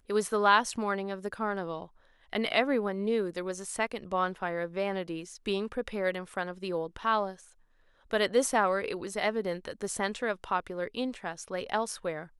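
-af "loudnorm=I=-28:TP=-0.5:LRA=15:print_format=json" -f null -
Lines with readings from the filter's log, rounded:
"input_i" : "-31.6",
"input_tp" : "-8.8",
"input_lra" : "3.5",
"input_thresh" : "-41.8",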